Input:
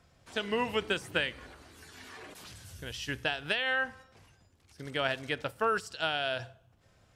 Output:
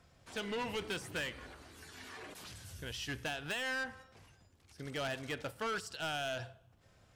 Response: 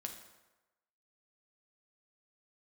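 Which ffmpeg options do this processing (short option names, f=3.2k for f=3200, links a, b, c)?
-af "asoftclip=type=tanh:threshold=-32.5dB,volume=-1dB"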